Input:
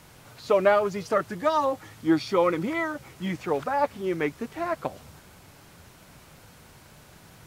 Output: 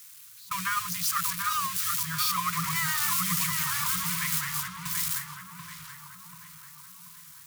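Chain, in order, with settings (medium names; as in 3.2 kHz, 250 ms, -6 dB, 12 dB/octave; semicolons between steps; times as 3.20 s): zero-crossing glitches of -18 dBFS; gate with hold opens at -15 dBFS; FFT band-reject 190–970 Hz; 2.43–4.68 s: ever faster or slower copies 105 ms, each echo -1 st, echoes 2; tape echo 735 ms, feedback 62%, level -3 dB, low-pass 1.7 kHz; trim -2 dB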